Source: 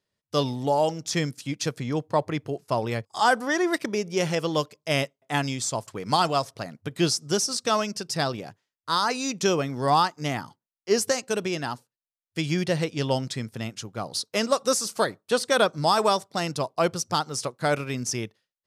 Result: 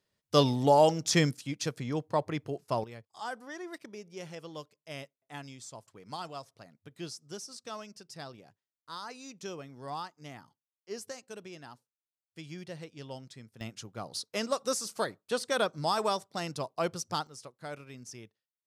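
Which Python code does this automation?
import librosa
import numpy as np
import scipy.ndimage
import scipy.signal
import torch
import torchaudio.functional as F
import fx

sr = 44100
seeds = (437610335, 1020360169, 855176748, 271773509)

y = fx.gain(x, sr, db=fx.steps((0.0, 1.0), (1.37, -5.5), (2.84, -18.0), (13.61, -8.0), (17.27, -17.5)))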